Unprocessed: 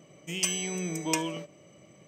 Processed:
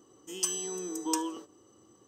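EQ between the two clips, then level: static phaser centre 610 Hz, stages 6; 0.0 dB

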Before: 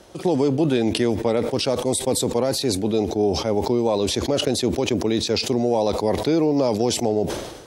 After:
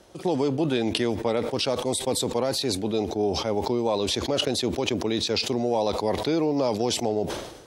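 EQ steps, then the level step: dynamic bell 1.1 kHz, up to +4 dB, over -35 dBFS, Q 0.88; dynamic bell 3.4 kHz, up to +5 dB, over -38 dBFS, Q 1.1; -5.5 dB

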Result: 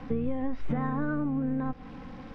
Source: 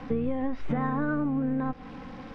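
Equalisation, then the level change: bass shelf 180 Hz +5.5 dB; -3.5 dB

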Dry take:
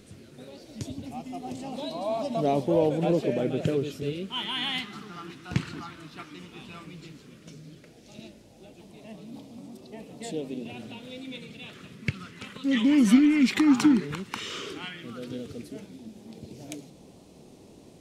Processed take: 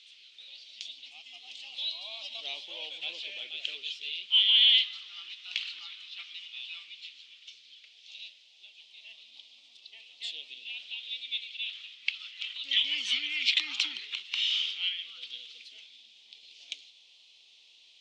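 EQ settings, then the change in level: ladder band-pass 2.6 kHz, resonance 25%; distance through air 83 m; resonant high shelf 2.3 kHz +12.5 dB, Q 3; +5.5 dB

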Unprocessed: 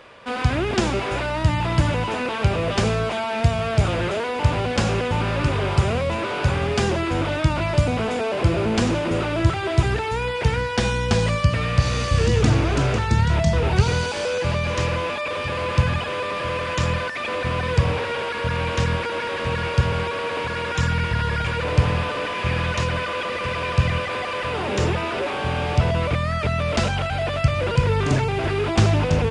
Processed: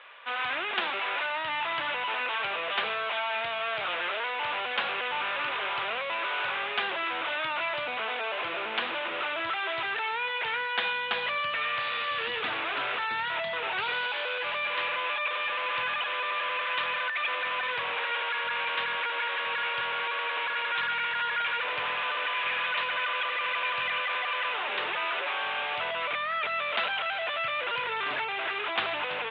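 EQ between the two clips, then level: high-pass 1.1 kHz 12 dB/octave; steep low-pass 3.7 kHz 72 dB/octave; 0.0 dB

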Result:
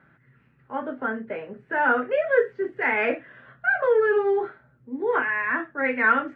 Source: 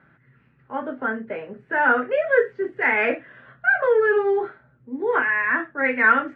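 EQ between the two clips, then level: dynamic bell 1.8 kHz, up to -3 dB, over -28 dBFS, Q 2; -1.5 dB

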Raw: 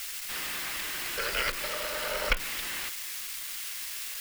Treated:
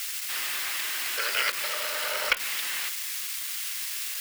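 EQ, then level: high-pass 1 kHz 6 dB/octave; +4.5 dB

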